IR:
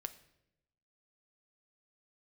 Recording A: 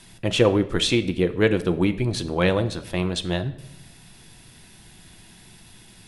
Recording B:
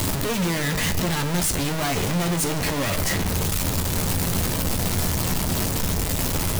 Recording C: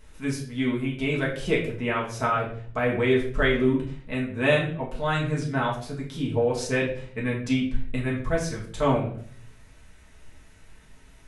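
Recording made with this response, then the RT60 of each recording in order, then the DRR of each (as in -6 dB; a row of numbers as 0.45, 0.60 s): A; 0.85, 2.3, 0.55 s; 8.5, 6.0, -5.0 dB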